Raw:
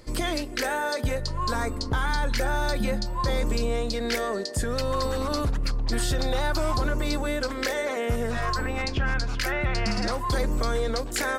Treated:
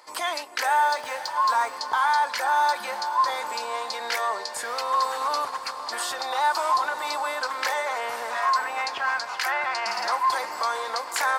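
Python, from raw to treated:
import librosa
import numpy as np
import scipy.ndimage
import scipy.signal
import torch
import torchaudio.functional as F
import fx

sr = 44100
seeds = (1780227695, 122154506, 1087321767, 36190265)

y = fx.median_filter(x, sr, points=3, at=(0.87, 1.73))
y = fx.highpass_res(y, sr, hz=910.0, q=3.6)
y = fx.echo_diffused(y, sr, ms=567, feedback_pct=57, wet_db=-12)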